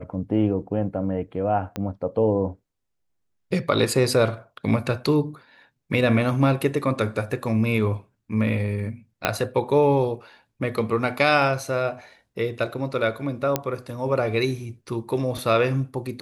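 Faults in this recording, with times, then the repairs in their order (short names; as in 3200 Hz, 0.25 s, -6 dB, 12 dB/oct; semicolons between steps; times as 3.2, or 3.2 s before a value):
1.76 pop -15 dBFS
9.25 pop -4 dBFS
13.56 pop -6 dBFS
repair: de-click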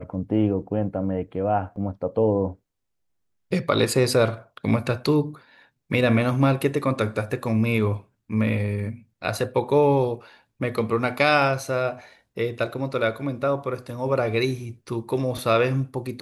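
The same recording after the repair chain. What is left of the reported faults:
1.76 pop
9.25 pop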